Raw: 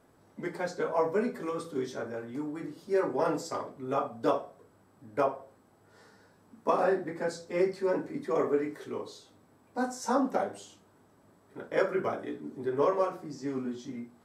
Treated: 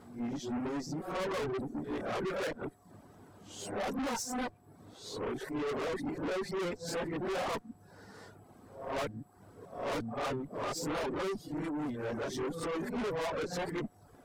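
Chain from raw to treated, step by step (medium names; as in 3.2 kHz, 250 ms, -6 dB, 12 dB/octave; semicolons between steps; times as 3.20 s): reverse the whole clip; bass shelf 200 Hz +6.5 dB; valve stage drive 39 dB, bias 0.4; reverb removal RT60 0.59 s; whistle 720 Hz -75 dBFS; trim +7 dB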